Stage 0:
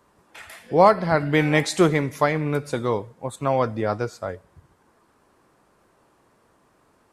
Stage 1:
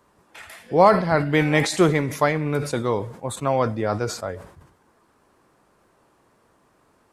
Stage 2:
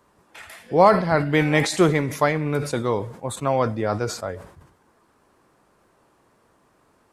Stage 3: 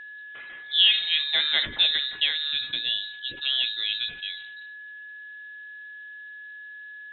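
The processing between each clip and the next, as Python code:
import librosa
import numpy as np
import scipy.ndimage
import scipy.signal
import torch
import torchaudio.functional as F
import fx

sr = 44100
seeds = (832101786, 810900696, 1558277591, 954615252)

y1 = fx.sustainer(x, sr, db_per_s=96.0)
y2 = y1
y3 = y2 + 10.0 ** (-34.0 / 20.0) * np.sin(2.0 * np.pi * 2200.0 * np.arange(len(y2)) / sr)
y3 = fx.freq_invert(y3, sr, carrier_hz=3900)
y3 = y3 * librosa.db_to_amplitude(-5.0)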